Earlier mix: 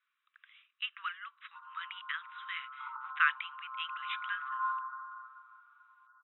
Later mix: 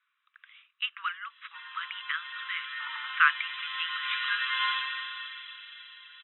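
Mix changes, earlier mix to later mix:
speech +5.5 dB; background: remove steep low-pass 1.4 kHz 96 dB/octave

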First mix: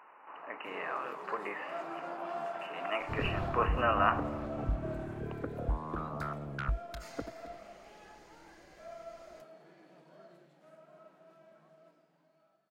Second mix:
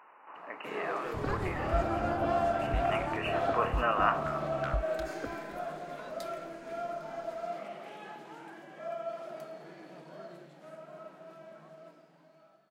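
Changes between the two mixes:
first sound +9.5 dB; second sound: entry -1.95 s

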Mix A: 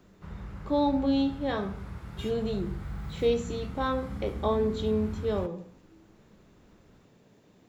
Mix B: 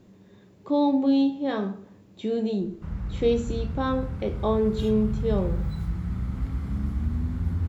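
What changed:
background: entry +2.60 s; master: add bass shelf 260 Hz +10.5 dB

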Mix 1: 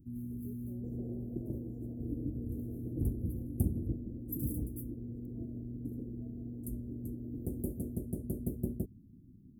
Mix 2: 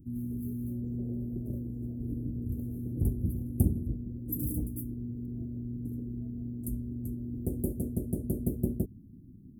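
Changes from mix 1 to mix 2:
first sound +5.5 dB; reverb: off

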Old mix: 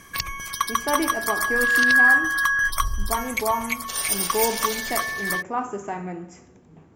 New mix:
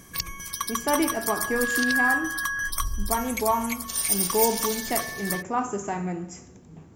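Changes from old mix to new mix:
background -8.0 dB; master: add tone controls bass +5 dB, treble +9 dB

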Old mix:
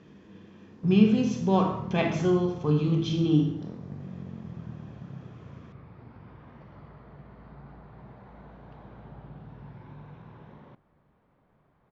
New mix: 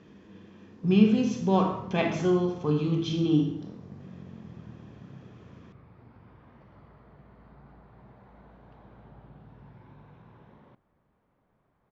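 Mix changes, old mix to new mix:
background -4.5 dB; master: add peaking EQ 150 Hz -4 dB 0.23 oct

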